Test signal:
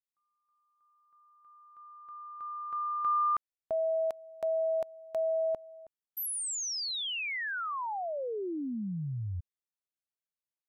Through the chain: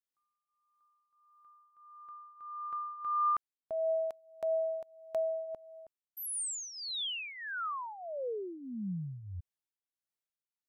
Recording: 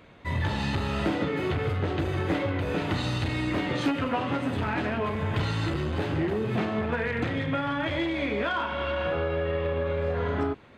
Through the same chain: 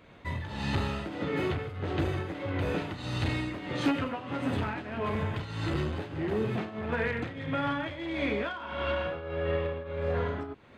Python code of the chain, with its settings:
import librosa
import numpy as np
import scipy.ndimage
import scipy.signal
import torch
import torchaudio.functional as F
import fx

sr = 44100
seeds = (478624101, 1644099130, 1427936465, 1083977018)

y = fx.tremolo_shape(x, sr, shape='triangle', hz=1.6, depth_pct=80)